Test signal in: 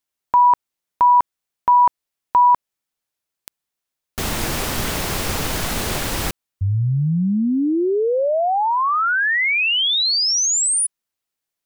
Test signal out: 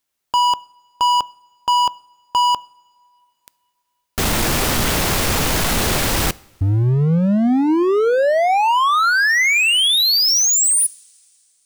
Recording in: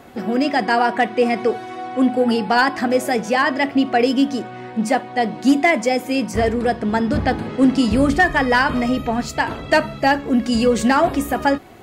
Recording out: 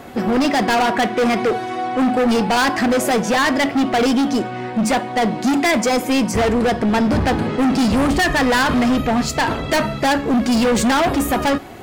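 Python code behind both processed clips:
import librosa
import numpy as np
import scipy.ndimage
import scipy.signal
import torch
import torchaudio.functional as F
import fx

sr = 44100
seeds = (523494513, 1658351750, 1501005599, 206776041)

y = np.clip(x, -10.0 ** (-20.5 / 20.0), 10.0 ** (-20.5 / 20.0))
y = fx.rev_double_slope(y, sr, seeds[0], early_s=0.56, late_s=2.8, knee_db=-17, drr_db=20.0)
y = y * 10.0 ** (6.5 / 20.0)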